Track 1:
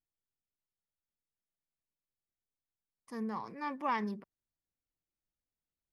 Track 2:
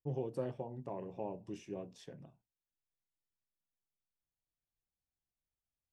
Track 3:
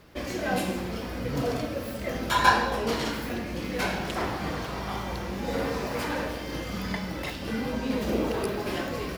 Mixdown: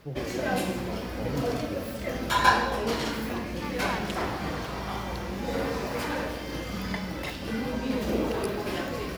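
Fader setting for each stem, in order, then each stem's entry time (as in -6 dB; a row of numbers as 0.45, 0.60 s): -2.0, +2.0, -0.5 dB; 0.00, 0.00, 0.00 s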